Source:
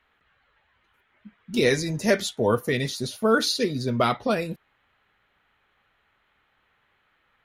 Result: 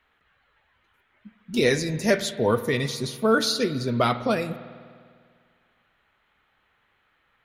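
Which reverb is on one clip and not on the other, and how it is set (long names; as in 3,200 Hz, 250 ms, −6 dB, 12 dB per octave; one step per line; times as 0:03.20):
spring reverb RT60 2 s, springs 50 ms, chirp 35 ms, DRR 12.5 dB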